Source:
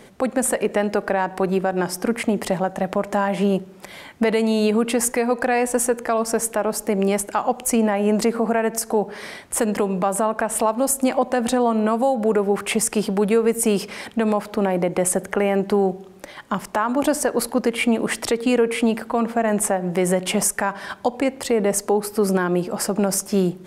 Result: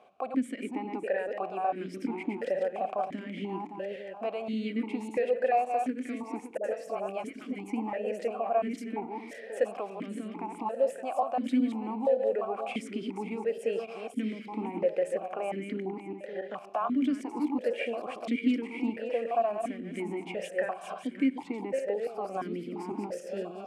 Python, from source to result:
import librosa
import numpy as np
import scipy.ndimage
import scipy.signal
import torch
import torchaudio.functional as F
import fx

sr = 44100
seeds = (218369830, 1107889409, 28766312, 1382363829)

p1 = fx.reverse_delay_fb(x, sr, ms=283, feedback_pct=51, wet_db=-4.5)
p2 = fx.rider(p1, sr, range_db=3, speed_s=0.5)
p3 = p1 + (p2 * librosa.db_to_amplitude(-2.5))
p4 = fx.dispersion(p3, sr, late='highs', ms=70.0, hz=550.0, at=(6.57, 7.56))
p5 = fx.vowel_held(p4, sr, hz=2.9)
y = p5 * librosa.db_to_amplitude(-6.5)